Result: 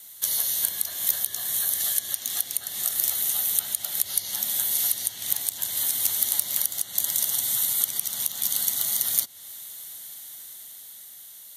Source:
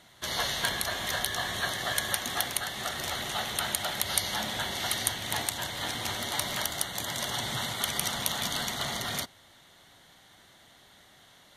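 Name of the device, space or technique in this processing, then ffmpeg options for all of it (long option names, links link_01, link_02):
FM broadcast chain: -filter_complex "[0:a]asettb=1/sr,asplit=3[link_01][link_02][link_03];[link_01]atrim=end=1.804[link_04];[link_02]atrim=start=1.8:end=2.56,asetpts=PTS-STARTPTS,afade=type=in:duration=0.004:curve=qsin,afade=type=out:start_time=0.756:duration=0.004:curve=qsin,equalizer=frequency=3900:width_type=o:width=2.7:gain=6[link_05];[link_03]atrim=start=2.556[link_06];[link_04][link_05]acrossfade=duration=0.004:curve1=hsin:curve2=qsin[link_07];[link_07][link_06]acrossfade=duration=0.004:curve1=qsin:curve2=hsin,highpass=71,dynaudnorm=framelen=260:gausssize=13:maxgain=10dB,acrossover=split=620|7300[link_08][link_09][link_10];[link_08]acompressor=threshold=-42dB:ratio=4[link_11];[link_09]acompressor=threshold=-38dB:ratio=4[link_12];[link_10]acompressor=threshold=-47dB:ratio=4[link_13];[link_11][link_12][link_13]amix=inputs=3:normalize=0,aemphasis=mode=production:type=75fm,alimiter=limit=-9.5dB:level=0:latency=1:release=221,asoftclip=type=hard:threshold=-13.5dB,lowpass=frequency=15000:width=0.5412,lowpass=frequency=15000:width=1.3066,aemphasis=mode=production:type=75fm,volume=-7dB"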